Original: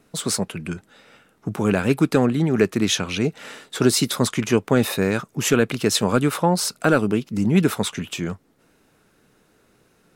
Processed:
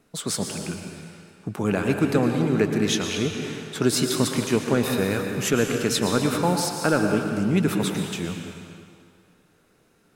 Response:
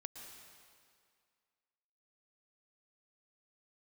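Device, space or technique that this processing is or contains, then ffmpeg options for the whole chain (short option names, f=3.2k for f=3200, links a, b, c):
stairwell: -filter_complex "[1:a]atrim=start_sample=2205[a];[0:a][a]afir=irnorm=-1:irlink=0,volume=1.5dB"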